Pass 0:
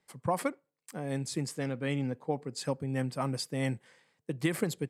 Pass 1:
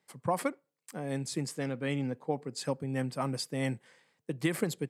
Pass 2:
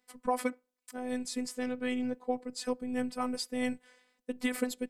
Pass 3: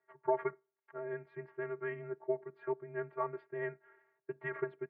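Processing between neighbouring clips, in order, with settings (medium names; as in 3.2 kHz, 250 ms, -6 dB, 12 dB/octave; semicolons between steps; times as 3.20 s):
high-pass 110 Hz
robot voice 250 Hz; trim +1.5 dB
mistuned SSB -110 Hz 430–2000 Hz; vibrato 13 Hz 21 cents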